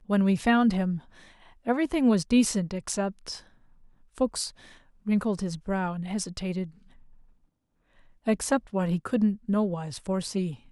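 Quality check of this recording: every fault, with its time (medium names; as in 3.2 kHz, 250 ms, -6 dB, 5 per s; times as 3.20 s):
2.89 s: dropout 2.7 ms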